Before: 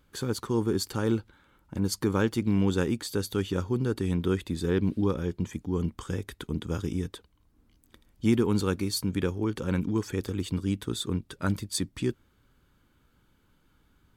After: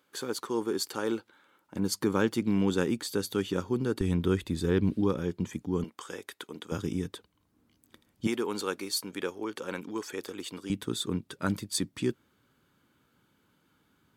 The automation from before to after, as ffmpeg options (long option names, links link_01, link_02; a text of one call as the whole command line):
ffmpeg -i in.wav -af "asetnsamples=nb_out_samples=441:pad=0,asendcmd='1.74 highpass f 160;4.01 highpass f 46;4.97 highpass f 120;5.84 highpass f 480;6.72 highpass f 120;8.27 highpass f 440;10.7 highpass f 140',highpass=340" out.wav